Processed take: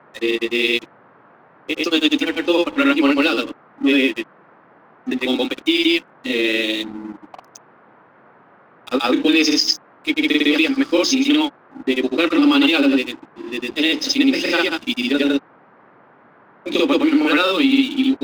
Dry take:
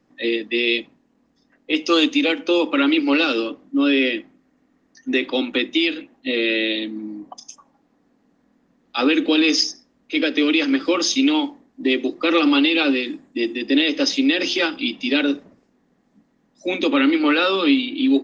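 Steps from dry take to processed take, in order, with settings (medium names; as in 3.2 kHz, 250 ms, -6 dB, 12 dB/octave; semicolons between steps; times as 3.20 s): granulator 106 ms, pitch spread up and down by 0 st; crossover distortion -39 dBFS; band noise 130–1500 Hz -54 dBFS; trim +4 dB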